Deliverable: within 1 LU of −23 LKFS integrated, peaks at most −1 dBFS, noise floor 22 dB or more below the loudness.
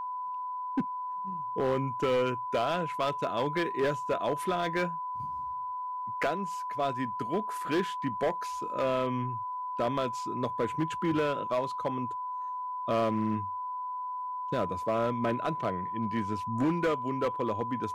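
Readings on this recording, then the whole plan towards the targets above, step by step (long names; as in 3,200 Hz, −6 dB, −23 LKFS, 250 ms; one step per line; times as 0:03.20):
share of clipped samples 1.7%; peaks flattened at −22.5 dBFS; interfering tone 1,000 Hz; level of the tone −33 dBFS; integrated loudness −31.5 LKFS; sample peak −22.5 dBFS; target loudness −23.0 LKFS
→ clipped peaks rebuilt −22.5 dBFS
notch filter 1,000 Hz, Q 30
level +8.5 dB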